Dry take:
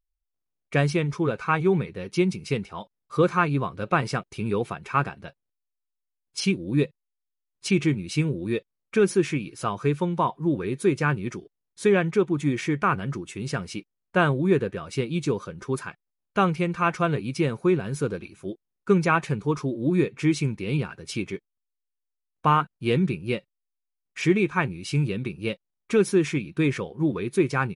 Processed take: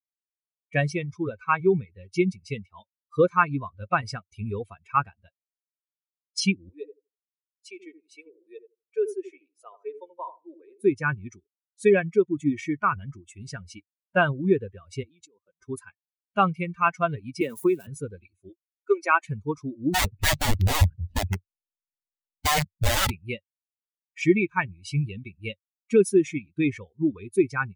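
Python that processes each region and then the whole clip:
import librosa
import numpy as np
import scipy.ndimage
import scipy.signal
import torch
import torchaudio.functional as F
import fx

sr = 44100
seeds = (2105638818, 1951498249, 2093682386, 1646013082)

y = fx.chain(x, sr, fx.ladder_highpass(hz=370.0, resonance_pct=45),
    fx.echo_filtered(ms=81, feedback_pct=36, hz=860.0, wet_db=-4.0), at=(6.69, 10.84))
y = fx.chain(y, sr, fx.highpass(hz=250.0, slope=12),
    fx.high_shelf(hz=2000.0, db=-2.5),
    fx.level_steps(step_db=20), at=(15.03, 15.61))
y = fx.chain(y, sr, fx.crossing_spikes(level_db=-29.0),
    fx.highpass(hz=200.0, slope=12),
    fx.band_squash(depth_pct=100), at=(17.41, 17.87))
y = fx.chain(y, sr, fx.brickwall_highpass(low_hz=260.0),
    fx.notch(hz=460.0, q=7.4), at=(18.49, 19.25))
y = fx.chain(y, sr, fx.median_filter(points=41),
    fx.bass_treble(bass_db=14, treble_db=-5),
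    fx.overflow_wrap(gain_db=16.0), at=(19.94, 23.1))
y = fx.bin_expand(y, sr, power=2.0)
y = fx.low_shelf_res(y, sr, hz=110.0, db=6.0, q=3.0)
y = y * librosa.db_to_amplitude(5.0)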